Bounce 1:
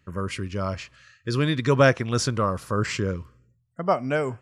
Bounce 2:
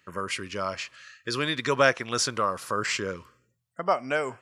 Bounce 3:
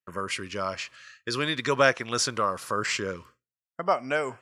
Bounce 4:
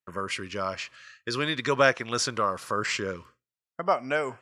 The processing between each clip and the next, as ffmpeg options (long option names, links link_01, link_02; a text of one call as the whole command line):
ffmpeg -i in.wav -filter_complex "[0:a]highpass=frequency=820:poles=1,asplit=2[link_01][link_02];[link_02]acompressor=threshold=-35dB:ratio=6,volume=-1dB[link_03];[link_01][link_03]amix=inputs=2:normalize=0" out.wav
ffmpeg -i in.wav -af "agate=range=-33dB:threshold=-47dB:ratio=3:detection=peak" out.wav
ffmpeg -i in.wav -af "highshelf=frequency=8600:gain=-6.5" out.wav